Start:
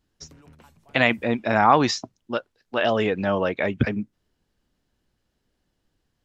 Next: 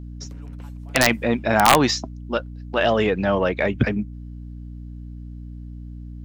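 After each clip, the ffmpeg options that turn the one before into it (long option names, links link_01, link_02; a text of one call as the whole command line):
ffmpeg -i in.wav -filter_complex "[0:a]asplit=2[link_01][link_02];[link_02]asoftclip=type=tanh:threshold=-17dB,volume=-7dB[link_03];[link_01][link_03]amix=inputs=2:normalize=0,aeval=exprs='val(0)+0.02*(sin(2*PI*60*n/s)+sin(2*PI*2*60*n/s)/2+sin(2*PI*3*60*n/s)/3+sin(2*PI*4*60*n/s)/4+sin(2*PI*5*60*n/s)/5)':channel_layout=same,aeval=exprs='(mod(1.58*val(0)+1,2)-1)/1.58':channel_layout=same" out.wav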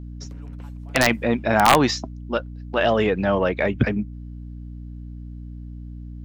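ffmpeg -i in.wav -af "highshelf=frequency=4500:gain=-5" out.wav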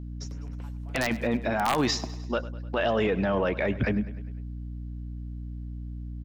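ffmpeg -i in.wav -af "alimiter=limit=-15dB:level=0:latency=1:release=12,aecho=1:1:101|202|303|404|505:0.141|0.0791|0.0443|0.0248|0.0139,volume=-2dB" out.wav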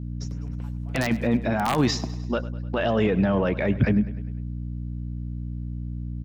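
ffmpeg -i in.wav -af "equalizer=frequency=140:width_type=o:width=2:gain=8.5" out.wav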